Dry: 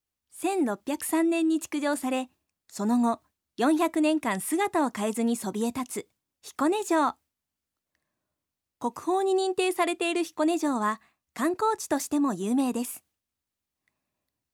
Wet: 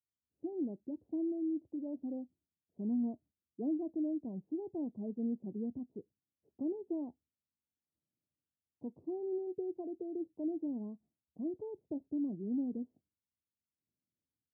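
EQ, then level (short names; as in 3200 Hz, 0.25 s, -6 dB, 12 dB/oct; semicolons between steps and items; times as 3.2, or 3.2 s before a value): Gaussian blur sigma 20 samples; HPF 90 Hz; -7.0 dB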